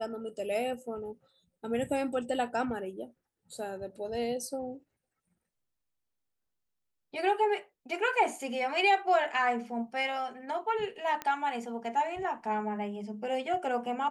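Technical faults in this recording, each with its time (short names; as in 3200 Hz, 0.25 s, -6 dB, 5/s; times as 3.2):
11.22 pop -19 dBFS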